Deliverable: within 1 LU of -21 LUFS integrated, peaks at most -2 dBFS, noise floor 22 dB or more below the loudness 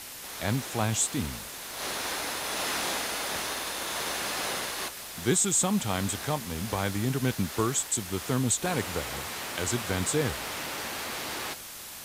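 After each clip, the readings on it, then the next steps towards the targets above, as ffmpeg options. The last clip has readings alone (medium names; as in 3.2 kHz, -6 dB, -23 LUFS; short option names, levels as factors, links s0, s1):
noise floor -42 dBFS; noise floor target -52 dBFS; loudness -29.5 LUFS; peak level -11.5 dBFS; loudness target -21.0 LUFS
-> -af "afftdn=nr=10:nf=-42"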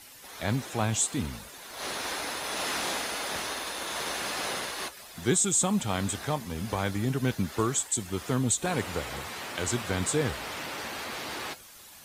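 noise floor -50 dBFS; noise floor target -52 dBFS
-> -af "afftdn=nr=6:nf=-50"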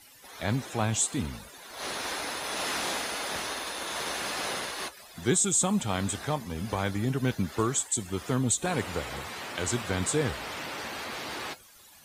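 noise floor -54 dBFS; loudness -30.0 LUFS; peak level -12.0 dBFS; loudness target -21.0 LUFS
-> -af "volume=2.82"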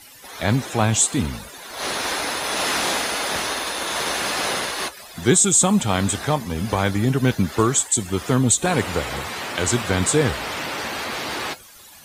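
loudness -21.0 LUFS; peak level -3.0 dBFS; noise floor -45 dBFS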